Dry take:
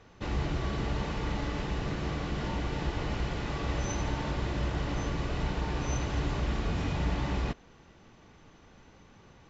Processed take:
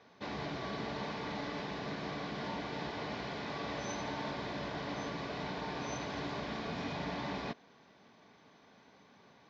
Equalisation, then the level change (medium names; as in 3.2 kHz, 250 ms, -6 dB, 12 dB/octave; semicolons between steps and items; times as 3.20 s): distance through air 81 m; cabinet simulation 310–5600 Hz, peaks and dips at 340 Hz -10 dB, 510 Hz -7 dB, 840 Hz -5 dB, 1.3 kHz -9 dB, 1.9 kHz -4 dB, 2.8 kHz -9 dB; +3.5 dB